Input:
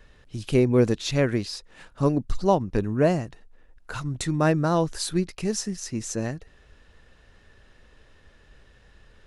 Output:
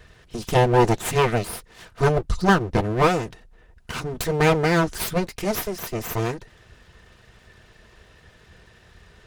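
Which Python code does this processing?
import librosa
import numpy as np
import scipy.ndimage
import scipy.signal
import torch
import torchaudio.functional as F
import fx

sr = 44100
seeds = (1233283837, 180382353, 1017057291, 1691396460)

y = np.abs(x)
y = fx.notch_comb(y, sr, f0_hz=280.0)
y = y * librosa.db_to_amplitude(8.0)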